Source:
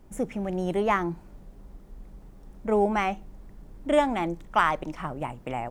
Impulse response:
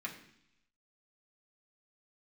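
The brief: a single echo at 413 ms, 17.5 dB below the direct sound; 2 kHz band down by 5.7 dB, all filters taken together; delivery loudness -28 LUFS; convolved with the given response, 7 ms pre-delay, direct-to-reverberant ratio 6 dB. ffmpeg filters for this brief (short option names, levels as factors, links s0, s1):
-filter_complex "[0:a]equalizer=f=2000:t=o:g=-7.5,aecho=1:1:413:0.133,asplit=2[s0][s1];[1:a]atrim=start_sample=2205,adelay=7[s2];[s1][s2]afir=irnorm=-1:irlink=0,volume=0.447[s3];[s0][s3]amix=inputs=2:normalize=0,volume=0.944"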